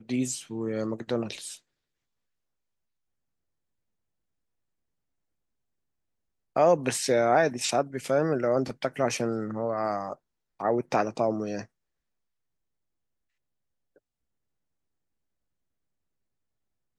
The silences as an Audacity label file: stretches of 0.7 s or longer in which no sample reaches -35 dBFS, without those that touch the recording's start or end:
1.550000	6.560000	silence